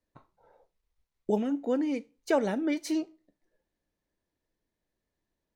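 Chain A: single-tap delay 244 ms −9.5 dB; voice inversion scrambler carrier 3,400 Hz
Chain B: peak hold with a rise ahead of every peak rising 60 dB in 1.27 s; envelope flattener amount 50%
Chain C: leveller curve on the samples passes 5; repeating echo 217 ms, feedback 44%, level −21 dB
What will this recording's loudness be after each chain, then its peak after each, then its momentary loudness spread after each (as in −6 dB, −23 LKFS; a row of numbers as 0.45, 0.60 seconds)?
−26.0, −25.0, −20.0 LKFS; −13.5, −9.5, −14.5 dBFS; 14, 17, 5 LU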